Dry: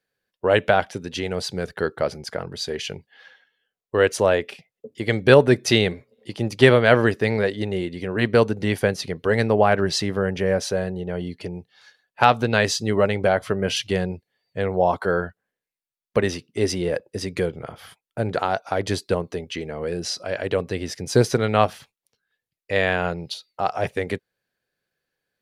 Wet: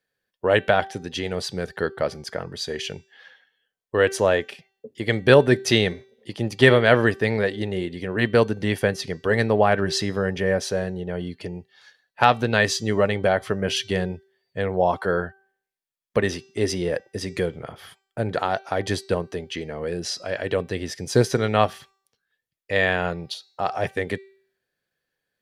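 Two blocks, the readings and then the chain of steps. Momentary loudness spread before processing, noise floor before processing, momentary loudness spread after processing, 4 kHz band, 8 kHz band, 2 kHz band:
13 LU, under -85 dBFS, 13 LU, -0.5 dB, -1.0 dB, +0.5 dB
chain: de-hum 388.2 Hz, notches 21; small resonant body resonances 1800/3300 Hz, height 8 dB; gain -1 dB

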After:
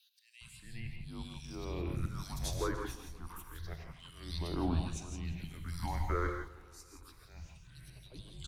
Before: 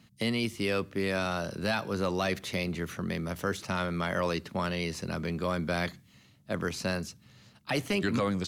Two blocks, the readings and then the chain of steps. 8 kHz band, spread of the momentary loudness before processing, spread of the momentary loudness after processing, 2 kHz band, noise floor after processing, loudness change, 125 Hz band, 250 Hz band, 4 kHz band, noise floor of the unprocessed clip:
-5.0 dB, 5 LU, 19 LU, -15.0 dB, -60 dBFS, -8.0 dB, -4.5 dB, -10.5 dB, -11.5 dB, -60 dBFS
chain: compressor 2.5:1, threshold -32 dBFS, peak gain reduction 5.5 dB; auto swell 0.668 s; frequency shift -250 Hz; phaser stages 6, 0.28 Hz, lowest notch 130–2100 Hz; bands offset in time highs, lows 0.41 s, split 2800 Hz; non-linear reverb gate 0.19 s rising, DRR 4 dB; warbling echo 0.176 s, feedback 62%, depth 103 cents, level -20 dB; gain +3 dB

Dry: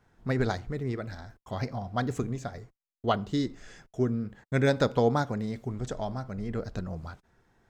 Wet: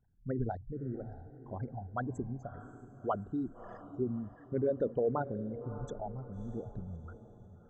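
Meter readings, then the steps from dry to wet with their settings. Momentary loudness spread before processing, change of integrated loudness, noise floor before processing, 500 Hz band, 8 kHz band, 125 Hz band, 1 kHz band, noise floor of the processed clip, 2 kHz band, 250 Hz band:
16 LU, -7.0 dB, -81 dBFS, -5.5 dB, under -15 dB, -8.5 dB, -7.5 dB, -57 dBFS, -15.0 dB, -7.0 dB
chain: formant sharpening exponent 3; diffused feedback echo 0.613 s, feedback 42%, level -13.5 dB; gain -7 dB

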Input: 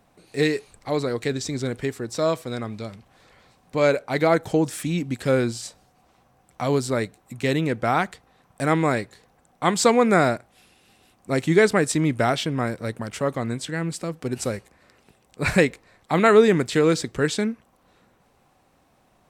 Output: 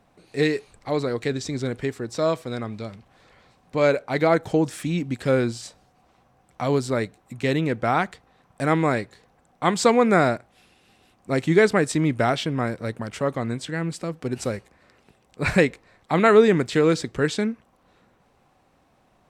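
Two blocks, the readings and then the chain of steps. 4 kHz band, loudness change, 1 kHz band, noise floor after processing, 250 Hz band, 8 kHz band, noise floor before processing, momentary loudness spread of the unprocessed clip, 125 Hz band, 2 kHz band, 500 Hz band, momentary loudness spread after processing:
-1.5 dB, 0.0 dB, 0.0 dB, -62 dBFS, 0.0 dB, -4.0 dB, -62 dBFS, 13 LU, 0.0 dB, -0.5 dB, 0.0 dB, 13 LU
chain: high shelf 7900 Hz -9 dB

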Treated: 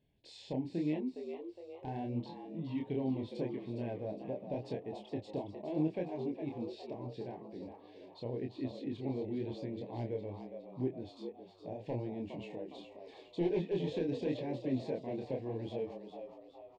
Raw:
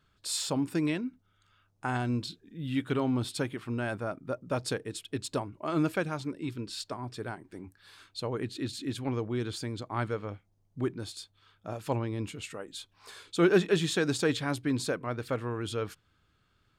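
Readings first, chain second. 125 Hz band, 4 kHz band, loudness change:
-7.5 dB, -16.0 dB, -7.0 dB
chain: low shelf 100 Hz -11.5 dB; in parallel at +2 dB: compressor, threshold -40 dBFS, peak gain reduction 19.5 dB; on the sum: wavefolder -18 dBFS; chorus 0.82 Hz, depth 7.9 ms; Butterworth band-stop 1300 Hz, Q 1; tape spacing loss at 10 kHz 39 dB; frequency-shifting echo 0.412 s, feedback 46%, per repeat +88 Hz, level -9 dB; gain -2.5 dB

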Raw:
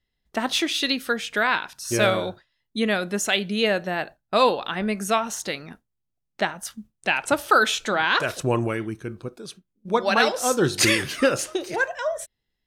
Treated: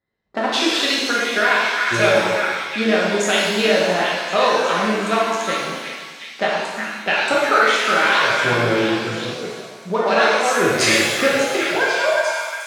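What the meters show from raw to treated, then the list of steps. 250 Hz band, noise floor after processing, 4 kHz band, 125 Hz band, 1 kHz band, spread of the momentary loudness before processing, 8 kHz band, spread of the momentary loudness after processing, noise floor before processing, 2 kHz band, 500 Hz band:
+3.5 dB, -37 dBFS, +5.5 dB, +2.0 dB, +6.0 dB, 14 LU, +2.5 dB, 11 LU, -79 dBFS, +7.0 dB, +6.0 dB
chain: Wiener smoothing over 15 samples; HPF 380 Hz 6 dB/oct; air absorption 50 m; delay with a stepping band-pass 0.359 s, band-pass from 1600 Hz, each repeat 0.7 oct, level -6.5 dB; compressor 2:1, threshold -28 dBFS, peak gain reduction 8 dB; shimmer reverb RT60 1.3 s, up +7 st, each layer -8 dB, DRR -5.5 dB; gain +5.5 dB

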